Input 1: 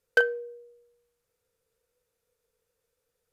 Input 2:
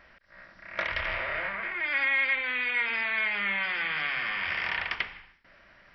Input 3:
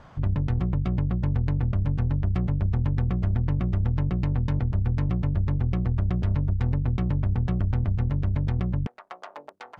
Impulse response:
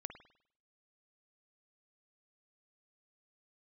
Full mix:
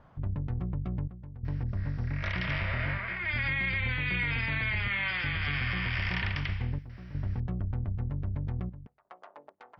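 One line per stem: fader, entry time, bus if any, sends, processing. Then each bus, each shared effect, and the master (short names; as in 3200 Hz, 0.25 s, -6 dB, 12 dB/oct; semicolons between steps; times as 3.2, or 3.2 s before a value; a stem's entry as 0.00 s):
off
-4.0 dB, 1.45 s, no send, high shelf 3800 Hz +10 dB
-8.5 dB, 0.00 s, send -20 dB, LPF 1900 Hz 6 dB/oct; step gate "xxxxxxxxx...xxxx" 126 bpm -12 dB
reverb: on, pre-delay 50 ms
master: limiter -21.5 dBFS, peak gain reduction 6.5 dB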